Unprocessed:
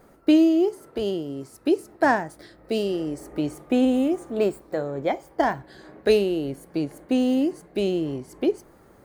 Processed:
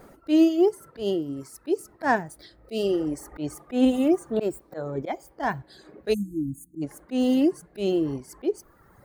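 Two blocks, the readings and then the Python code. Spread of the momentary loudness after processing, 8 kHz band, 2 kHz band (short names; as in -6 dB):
14 LU, +1.5 dB, -3.0 dB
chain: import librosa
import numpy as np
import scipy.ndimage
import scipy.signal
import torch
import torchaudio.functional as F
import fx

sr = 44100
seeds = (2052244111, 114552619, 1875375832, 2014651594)

y = fx.dereverb_blind(x, sr, rt60_s=1.2)
y = fx.spec_erase(y, sr, start_s=6.14, length_s=0.68, low_hz=340.0, high_hz=6200.0)
y = fx.auto_swell(y, sr, attack_ms=153.0)
y = y * 10.0 ** (4.5 / 20.0)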